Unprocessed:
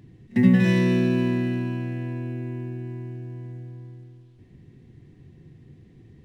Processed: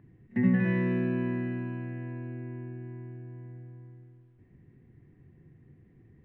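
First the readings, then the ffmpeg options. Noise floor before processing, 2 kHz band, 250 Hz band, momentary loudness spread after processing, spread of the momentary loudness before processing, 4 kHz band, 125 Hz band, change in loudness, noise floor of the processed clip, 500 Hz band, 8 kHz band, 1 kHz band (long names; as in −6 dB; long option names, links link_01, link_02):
−53 dBFS, −6.0 dB, −7.5 dB, 19 LU, 19 LU, below −15 dB, −7.5 dB, −7.5 dB, −60 dBFS, −7.5 dB, can't be measured, −6.0 dB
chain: -filter_complex "[0:a]acrossover=split=3900[link_01][link_02];[link_02]acompressor=threshold=-55dB:ratio=4:attack=1:release=60[link_03];[link_01][link_03]amix=inputs=2:normalize=0,highshelf=frequency=2800:width_type=q:width=1.5:gain=-13.5,volume=-7.5dB"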